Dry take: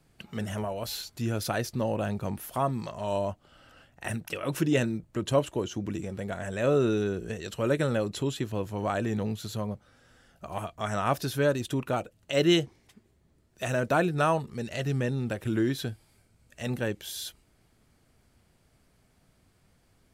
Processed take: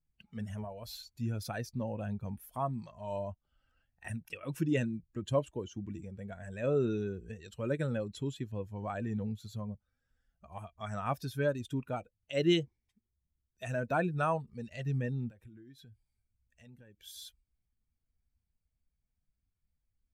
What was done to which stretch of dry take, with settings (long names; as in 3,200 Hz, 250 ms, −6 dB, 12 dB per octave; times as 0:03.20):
0:15.29–0:17.01: downward compressor 4 to 1, threshold −41 dBFS
whole clip: spectral dynamics exaggerated over time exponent 1.5; bass and treble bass +2 dB, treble −5 dB; level −4 dB